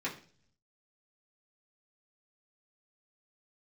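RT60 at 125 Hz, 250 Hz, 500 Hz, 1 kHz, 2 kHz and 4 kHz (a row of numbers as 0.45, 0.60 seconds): 1.0, 0.70, 0.50, 0.40, 0.40, 0.55 seconds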